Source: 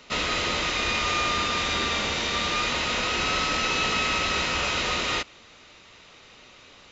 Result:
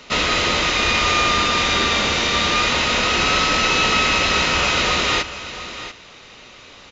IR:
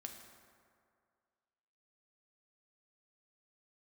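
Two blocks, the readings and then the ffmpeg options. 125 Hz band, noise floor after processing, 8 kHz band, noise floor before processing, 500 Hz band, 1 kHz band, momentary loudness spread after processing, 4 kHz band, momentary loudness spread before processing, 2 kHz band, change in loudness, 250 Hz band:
+8.0 dB, −43 dBFS, can't be measured, −51 dBFS, +7.5 dB, +7.5 dB, 12 LU, +7.5 dB, 2 LU, +7.5 dB, +7.5 dB, +8.0 dB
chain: -filter_complex "[0:a]asplit=2[link_01][link_02];[link_02]aecho=0:1:690:0.224[link_03];[link_01][link_03]amix=inputs=2:normalize=0,aresample=16000,aresample=44100,volume=7.5dB"

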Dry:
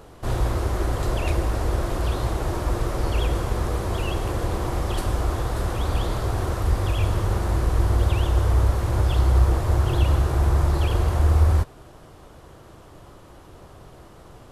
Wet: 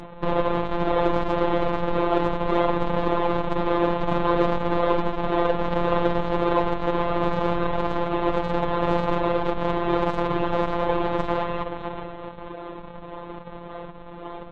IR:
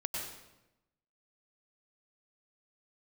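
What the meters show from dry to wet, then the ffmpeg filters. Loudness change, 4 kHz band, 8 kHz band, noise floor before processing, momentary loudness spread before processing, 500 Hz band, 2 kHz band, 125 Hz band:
−0.5 dB, −1.0 dB, below −20 dB, −47 dBFS, 6 LU, +7.5 dB, +3.0 dB, −10.5 dB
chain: -filter_complex "[0:a]bandreject=frequency=63.22:width_type=h:width=4,bandreject=frequency=126.44:width_type=h:width=4,bandreject=frequency=189.66:width_type=h:width=4,asplit=2[link_01][link_02];[1:a]atrim=start_sample=2205[link_03];[link_02][link_03]afir=irnorm=-1:irlink=0,volume=-21.5dB[link_04];[link_01][link_04]amix=inputs=2:normalize=0,acompressor=threshold=-21dB:ratio=10,asplit=2[link_05][link_06];[link_06]adelay=429,lowpass=frequency=2000:poles=1,volume=-13dB,asplit=2[link_07][link_08];[link_08]adelay=429,lowpass=frequency=2000:poles=1,volume=0.54,asplit=2[link_09][link_10];[link_10]adelay=429,lowpass=frequency=2000:poles=1,volume=0.54,asplit=2[link_11][link_12];[link_12]adelay=429,lowpass=frequency=2000:poles=1,volume=0.54,asplit=2[link_13][link_14];[link_14]adelay=429,lowpass=frequency=2000:poles=1,volume=0.54,asplit=2[link_15][link_16];[link_16]adelay=429,lowpass=frequency=2000:poles=1,volume=0.54[link_17];[link_05][link_07][link_09][link_11][link_13][link_15][link_17]amix=inputs=7:normalize=0,aphaser=in_gain=1:out_gain=1:delay=3.4:decay=0.29:speed=0.67:type=triangular,aresample=8000,acrusher=samples=13:mix=1:aa=0.000001:lfo=1:lforange=20.8:lforate=1.8,aresample=44100,asoftclip=type=tanh:threshold=-19.5dB,equalizer=frequency=250:width_type=o:width=1:gain=4,equalizer=frequency=500:width_type=o:width=1:gain=10,equalizer=frequency=1000:width_type=o:width=1:gain=12,afftfilt=real='hypot(re,im)*cos(PI*b)':imag='0':win_size=1024:overlap=0.75,volume=4.5dB" -ar 22050 -c:a libvorbis -b:a 32k

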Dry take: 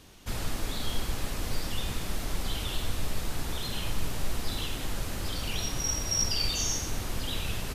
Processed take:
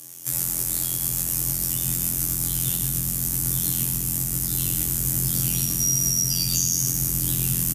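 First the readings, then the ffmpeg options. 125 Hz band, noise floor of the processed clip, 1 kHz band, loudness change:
+8.0 dB, −27 dBFS, −5.5 dB, +11.0 dB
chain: -filter_complex "[0:a]acrossover=split=1800[link_01][link_02];[link_02]aexciter=amount=8.6:drive=2.4:freq=5600[link_03];[link_01][link_03]amix=inputs=2:normalize=0,bass=frequency=250:gain=3,treble=frequency=4000:gain=-5,alimiter=limit=-20dB:level=0:latency=1:release=105,highpass=46,asubboost=boost=5:cutoff=200,acontrast=39,aecho=1:1:3.7:0.74,afftfilt=real='hypot(re,im)*cos(PI*b)':imag='0':win_size=2048:overlap=0.75,afreqshift=46,crystalizer=i=2.5:c=0,asplit=2[link_04][link_05];[link_05]asplit=6[link_06][link_07][link_08][link_09][link_10][link_11];[link_06]adelay=115,afreqshift=46,volume=-8dB[link_12];[link_07]adelay=230,afreqshift=92,volume=-14dB[link_13];[link_08]adelay=345,afreqshift=138,volume=-20dB[link_14];[link_09]adelay=460,afreqshift=184,volume=-26.1dB[link_15];[link_10]adelay=575,afreqshift=230,volume=-32.1dB[link_16];[link_11]adelay=690,afreqshift=276,volume=-38.1dB[link_17];[link_12][link_13][link_14][link_15][link_16][link_17]amix=inputs=6:normalize=0[link_18];[link_04][link_18]amix=inputs=2:normalize=0,volume=-7dB"

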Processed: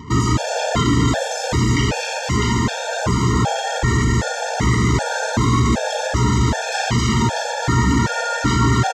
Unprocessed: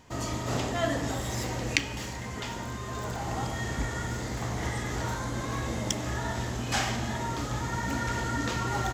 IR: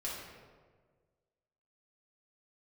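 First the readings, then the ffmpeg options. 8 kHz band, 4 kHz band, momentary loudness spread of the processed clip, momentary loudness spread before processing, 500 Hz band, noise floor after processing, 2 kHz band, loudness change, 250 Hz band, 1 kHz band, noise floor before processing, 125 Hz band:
+11.0 dB, +11.0 dB, 4 LU, 7 LU, +12.0 dB, −26 dBFS, +10.5 dB, +13.0 dB, +14.5 dB, +12.0 dB, −37 dBFS, +14.5 dB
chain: -filter_complex "[0:a]bass=frequency=250:gain=12,treble=frequency=4000:gain=14,asplit=2[link_01][link_02];[link_02]aecho=0:1:264:0.562[link_03];[link_01][link_03]amix=inputs=2:normalize=0,acontrast=77,alimiter=limit=-12dB:level=0:latency=1:release=15,asplit=2[link_04][link_05];[link_05]adelay=48,volume=-12dB[link_06];[link_04][link_06]amix=inputs=2:normalize=0,asplit=2[link_07][link_08];[link_08]highpass=frequency=720:poles=1,volume=18dB,asoftclip=type=tanh:threshold=-10dB[link_09];[link_07][link_09]amix=inputs=2:normalize=0,lowpass=frequency=1200:poles=1,volume=-6dB,lowpass=7400,anlmdn=0.398,highpass=frequency=44:width=0.5412,highpass=frequency=44:width=1.3066,afftfilt=real='re*gt(sin(2*PI*1.3*pts/sr)*(1-2*mod(floor(b*sr/1024/460),2)),0)':imag='im*gt(sin(2*PI*1.3*pts/sr)*(1-2*mod(floor(b*sr/1024/460),2)),0)':win_size=1024:overlap=0.75,volume=6.5dB"

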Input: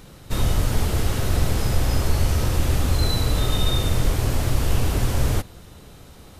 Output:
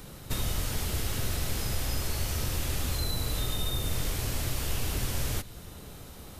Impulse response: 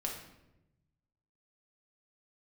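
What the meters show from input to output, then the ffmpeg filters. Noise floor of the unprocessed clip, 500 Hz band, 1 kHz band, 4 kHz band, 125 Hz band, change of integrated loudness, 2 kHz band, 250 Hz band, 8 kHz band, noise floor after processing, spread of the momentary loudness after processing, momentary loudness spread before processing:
−45 dBFS, −10.5 dB, −9.5 dB, −5.5 dB, −11.0 dB, −8.5 dB, −6.0 dB, −10.5 dB, −2.5 dB, −46 dBFS, 6 LU, 2 LU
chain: -filter_complex "[0:a]highshelf=frequency=11000:gain=10,acrossover=split=340|1700|7400[link_01][link_02][link_03][link_04];[link_01]acompressor=threshold=-28dB:ratio=4[link_05];[link_02]acompressor=threshold=-43dB:ratio=4[link_06];[link_03]acompressor=threshold=-37dB:ratio=4[link_07];[link_04]acompressor=threshold=-39dB:ratio=4[link_08];[link_05][link_06][link_07][link_08]amix=inputs=4:normalize=0,asplit=2[link_09][link_10];[1:a]atrim=start_sample=2205[link_11];[link_10][link_11]afir=irnorm=-1:irlink=0,volume=-18dB[link_12];[link_09][link_12]amix=inputs=2:normalize=0,volume=-2dB"

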